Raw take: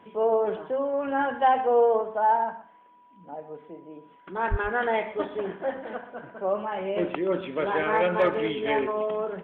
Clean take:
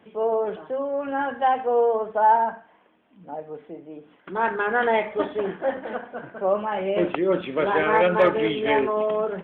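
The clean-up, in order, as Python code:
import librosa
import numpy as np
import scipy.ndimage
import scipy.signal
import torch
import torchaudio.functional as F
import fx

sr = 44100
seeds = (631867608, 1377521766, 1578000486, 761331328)

y = fx.notch(x, sr, hz=980.0, q=30.0)
y = fx.fix_deplosive(y, sr, at_s=(4.5,))
y = fx.fix_echo_inverse(y, sr, delay_ms=124, level_db=-15.5)
y = fx.fix_level(y, sr, at_s=2.01, step_db=4.5)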